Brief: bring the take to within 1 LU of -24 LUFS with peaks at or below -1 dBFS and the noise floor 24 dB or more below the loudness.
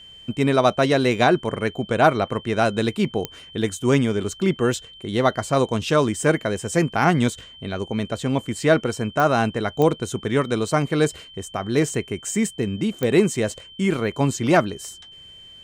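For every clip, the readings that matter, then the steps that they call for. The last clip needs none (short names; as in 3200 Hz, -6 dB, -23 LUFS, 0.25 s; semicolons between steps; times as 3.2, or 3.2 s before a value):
clicks 4; steady tone 3100 Hz; tone level -42 dBFS; loudness -22.0 LUFS; peak -3.5 dBFS; loudness target -24.0 LUFS
-> de-click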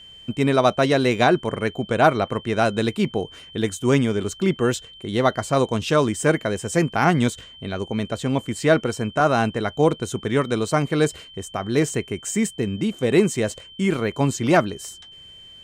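clicks 0; steady tone 3100 Hz; tone level -42 dBFS
-> notch 3100 Hz, Q 30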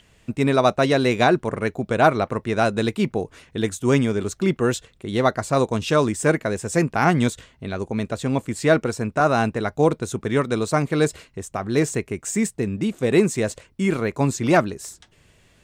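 steady tone none; loudness -22.0 LUFS; peak -3.5 dBFS; loudness target -24.0 LUFS
-> gain -2 dB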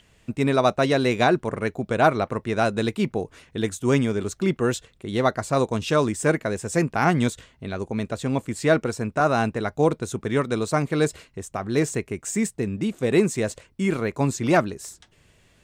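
loudness -24.0 LUFS; peak -5.5 dBFS; noise floor -59 dBFS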